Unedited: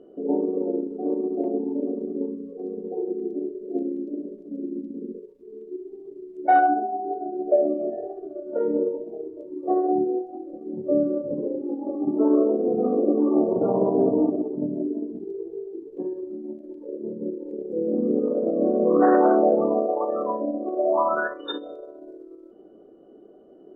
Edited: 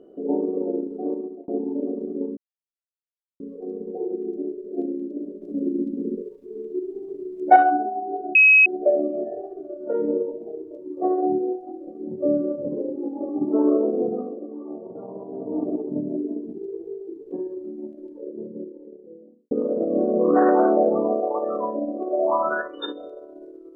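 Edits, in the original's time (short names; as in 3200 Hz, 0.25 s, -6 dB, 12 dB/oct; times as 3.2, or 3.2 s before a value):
1.03–1.48 fade out
2.37 insert silence 1.03 s
4.39–6.53 gain +6.5 dB
7.32 add tone 2550 Hz -9.5 dBFS 0.31 s
12.69–14.38 dip -15 dB, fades 0.43 s quadratic
16.54–18.17 studio fade out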